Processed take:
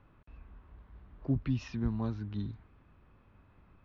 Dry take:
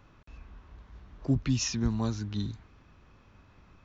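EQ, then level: distance through air 350 m; -3.5 dB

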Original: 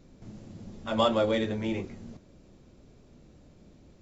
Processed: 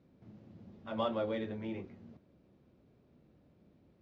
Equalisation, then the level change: high-pass 83 Hz; distance through air 240 m; -8.5 dB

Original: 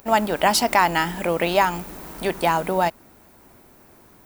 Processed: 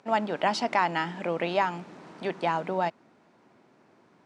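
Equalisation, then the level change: high-pass 130 Hz 24 dB/octave; low-pass 7.8 kHz 12 dB/octave; distance through air 110 m; -6.5 dB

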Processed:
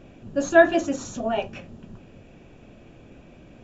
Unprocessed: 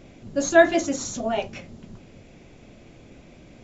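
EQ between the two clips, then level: resonant high shelf 3.3 kHz -6 dB, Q 1.5; band-stop 2.1 kHz, Q 5; 0.0 dB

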